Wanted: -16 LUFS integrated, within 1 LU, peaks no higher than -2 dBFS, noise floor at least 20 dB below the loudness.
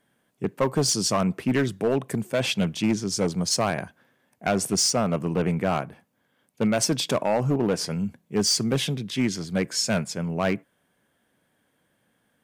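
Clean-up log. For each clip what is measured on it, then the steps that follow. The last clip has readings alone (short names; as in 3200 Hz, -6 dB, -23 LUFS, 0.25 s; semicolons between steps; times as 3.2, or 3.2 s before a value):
clipped 1.2%; flat tops at -16.0 dBFS; loudness -25.0 LUFS; peak -16.0 dBFS; loudness target -16.0 LUFS
-> clip repair -16 dBFS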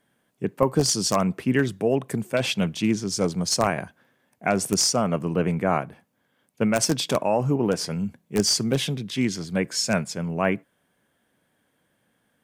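clipped 0.0%; loudness -24.0 LUFS; peak -7.0 dBFS; loudness target -16.0 LUFS
-> gain +8 dB; limiter -2 dBFS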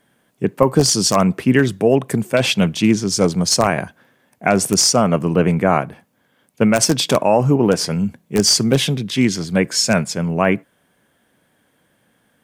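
loudness -16.5 LUFS; peak -2.0 dBFS; noise floor -63 dBFS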